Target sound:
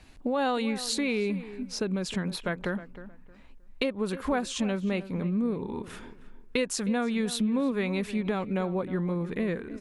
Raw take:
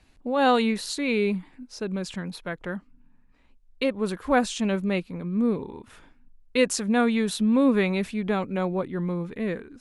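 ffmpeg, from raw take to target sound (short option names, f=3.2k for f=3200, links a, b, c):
-filter_complex "[0:a]acompressor=threshold=-33dB:ratio=4,asplit=2[a][b];[b]adelay=312,lowpass=f=2k:p=1,volume=-14dB,asplit=2[c][d];[d]adelay=312,lowpass=f=2k:p=1,volume=0.25,asplit=2[e][f];[f]adelay=312,lowpass=f=2k:p=1,volume=0.25[g];[c][e][g]amix=inputs=3:normalize=0[h];[a][h]amix=inputs=2:normalize=0,volume=6dB"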